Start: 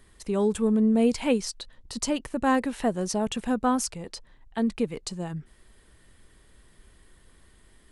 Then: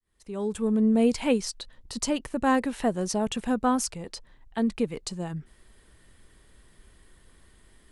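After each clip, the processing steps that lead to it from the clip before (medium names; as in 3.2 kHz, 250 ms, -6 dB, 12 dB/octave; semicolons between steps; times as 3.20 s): fade-in on the opening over 0.88 s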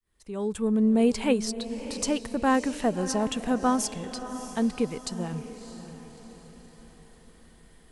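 echo that smears into a reverb 635 ms, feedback 48%, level -12 dB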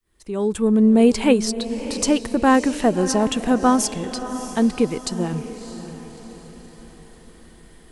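peaking EQ 340 Hz +6.5 dB 0.29 oct; trim +7 dB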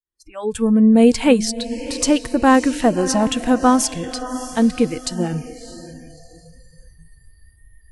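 spectral noise reduction 29 dB; trim +2.5 dB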